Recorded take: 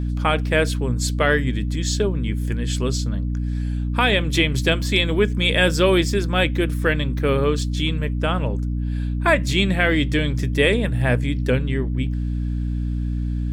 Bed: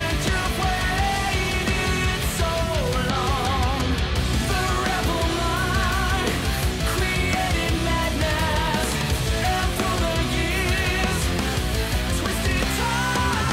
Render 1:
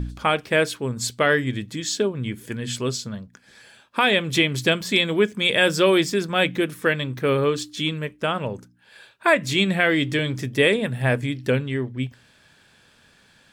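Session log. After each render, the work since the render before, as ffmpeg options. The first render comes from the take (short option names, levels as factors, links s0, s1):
-af "bandreject=f=60:t=h:w=4,bandreject=f=120:t=h:w=4,bandreject=f=180:t=h:w=4,bandreject=f=240:t=h:w=4,bandreject=f=300:t=h:w=4"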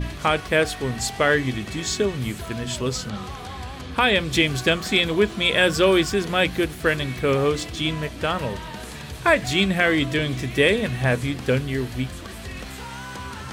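-filter_complex "[1:a]volume=0.237[s0];[0:a][s0]amix=inputs=2:normalize=0"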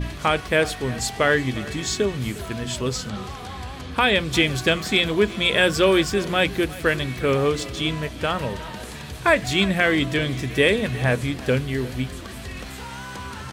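-filter_complex "[0:a]asplit=2[s0][s1];[s1]adelay=355.7,volume=0.126,highshelf=f=4000:g=-8[s2];[s0][s2]amix=inputs=2:normalize=0"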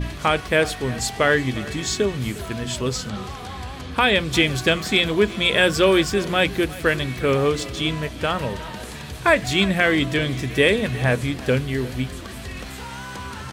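-af "volume=1.12"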